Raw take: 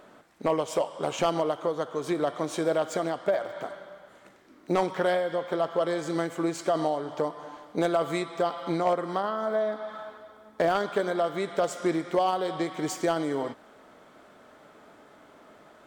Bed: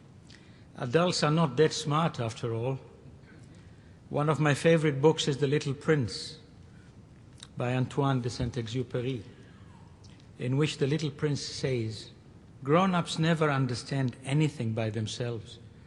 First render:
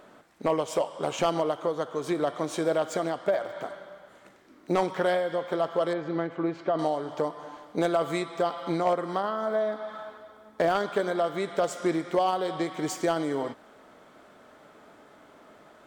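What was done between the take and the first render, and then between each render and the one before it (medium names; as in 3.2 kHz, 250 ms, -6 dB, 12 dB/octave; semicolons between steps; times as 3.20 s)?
5.93–6.79 s: distance through air 330 m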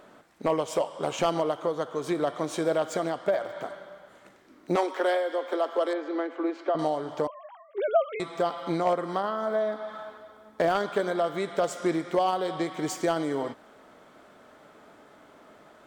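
4.76–6.75 s: steep high-pass 240 Hz 96 dB/octave; 7.27–8.20 s: formants replaced by sine waves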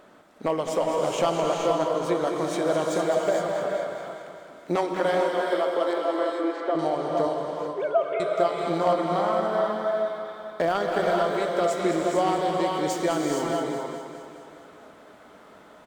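feedback delay 209 ms, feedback 60%, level -9 dB; gated-style reverb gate 490 ms rising, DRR 0.5 dB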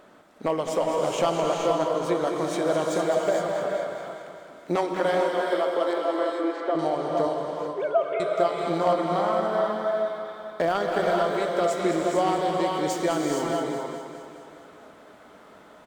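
no audible change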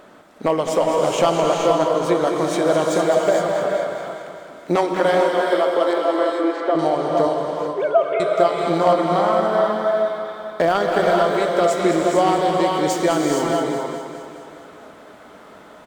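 trim +6.5 dB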